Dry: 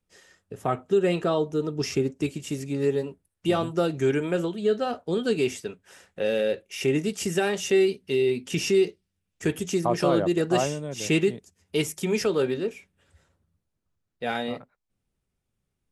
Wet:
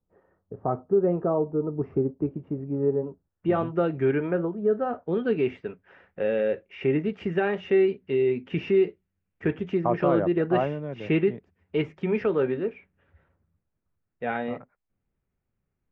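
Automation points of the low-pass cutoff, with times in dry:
low-pass 24 dB/octave
3.03 s 1.1 kHz
3.65 s 2.3 kHz
4.22 s 2.3 kHz
4.55 s 1.2 kHz
5.15 s 2.3 kHz

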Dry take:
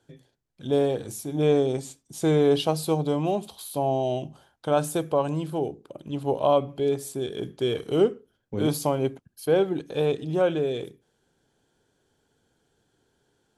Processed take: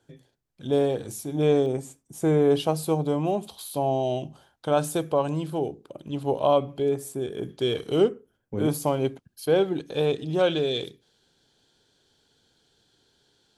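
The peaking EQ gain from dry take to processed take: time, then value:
peaking EQ 4.1 kHz 1.1 oct
-0.5 dB
from 1.66 s -12 dB
from 2.50 s -5 dB
from 3.47 s +1.5 dB
from 6.82 s -8 dB
from 7.49 s +4 dB
from 8.09 s -7 dB
from 8.87 s +4 dB
from 10.39 s +14.5 dB

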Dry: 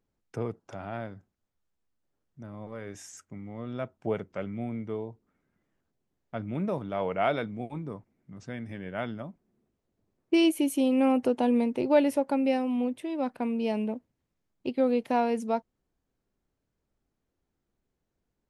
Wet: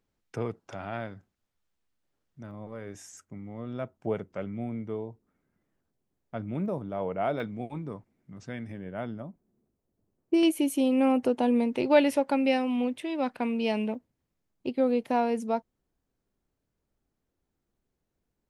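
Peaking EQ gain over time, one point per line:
peaking EQ 2.9 kHz 2.6 oct
+4.5 dB
from 2.51 s -3 dB
from 6.66 s -9.5 dB
from 7.40 s +1 dB
from 8.72 s -8.5 dB
from 10.43 s +0.5 dB
from 11.73 s +7 dB
from 13.95 s -1 dB

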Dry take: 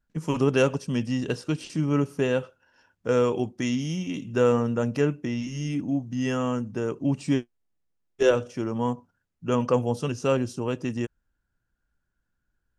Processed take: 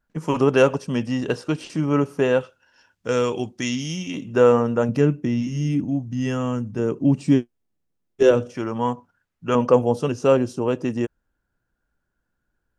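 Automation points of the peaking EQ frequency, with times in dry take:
peaking EQ +7.5 dB 2.9 oct
830 Hz
from 2.41 s 4.8 kHz
from 4.14 s 770 Hz
from 4.89 s 170 Hz
from 5.84 s 63 Hz
from 6.79 s 220 Hz
from 8.55 s 1.5 kHz
from 9.55 s 540 Hz

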